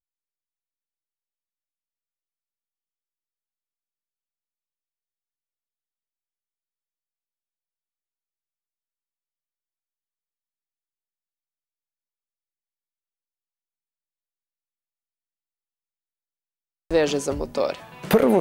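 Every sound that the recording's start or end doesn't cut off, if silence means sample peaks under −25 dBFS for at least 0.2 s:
0:16.91–0:17.74

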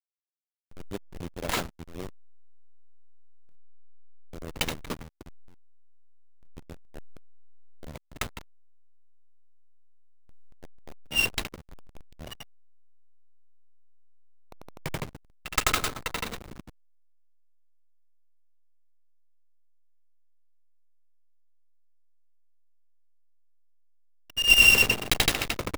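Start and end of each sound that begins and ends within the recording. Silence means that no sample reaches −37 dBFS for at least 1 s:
0:04.33–0:05.21
0:06.58–0:08.41
0:10.64–0:12.43
0:14.52–0:16.60

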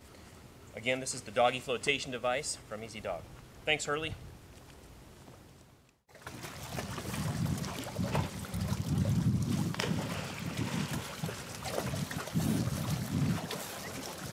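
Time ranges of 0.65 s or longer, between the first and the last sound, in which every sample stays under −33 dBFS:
0:04.13–0:06.27

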